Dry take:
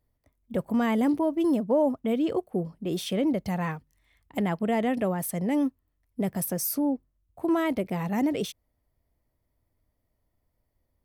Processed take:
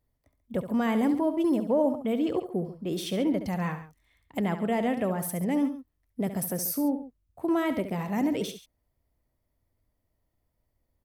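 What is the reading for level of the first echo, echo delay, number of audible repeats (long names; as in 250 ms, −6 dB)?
−10.5 dB, 69 ms, 2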